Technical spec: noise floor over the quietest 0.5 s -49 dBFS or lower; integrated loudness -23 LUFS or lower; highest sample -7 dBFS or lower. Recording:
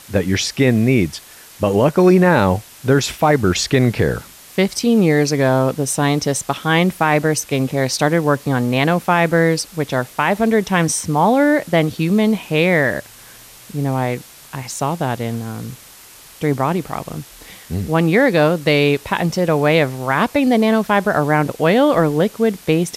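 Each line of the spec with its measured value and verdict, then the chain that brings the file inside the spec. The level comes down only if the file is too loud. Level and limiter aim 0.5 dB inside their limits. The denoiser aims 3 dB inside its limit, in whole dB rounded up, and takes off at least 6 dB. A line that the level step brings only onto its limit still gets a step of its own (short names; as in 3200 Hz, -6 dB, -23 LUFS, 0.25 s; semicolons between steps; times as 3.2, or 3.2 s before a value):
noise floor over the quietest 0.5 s -42 dBFS: fail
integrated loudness -16.5 LUFS: fail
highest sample -3.5 dBFS: fail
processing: denoiser 6 dB, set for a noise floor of -42 dBFS; gain -7 dB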